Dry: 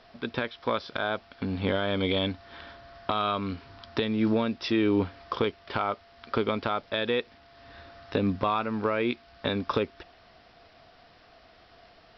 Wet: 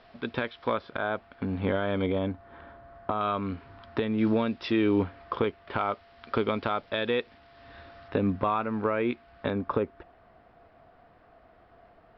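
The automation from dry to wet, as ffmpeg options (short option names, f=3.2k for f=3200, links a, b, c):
-af "asetnsamples=n=441:p=0,asendcmd='0.74 lowpass f 2100;2.06 lowpass f 1300;3.21 lowpass f 2200;4.18 lowpass f 3600;5.02 lowpass f 2400;5.78 lowpass f 3700;8.08 lowpass f 2200;9.5 lowpass f 1400',lowpass=3.6k"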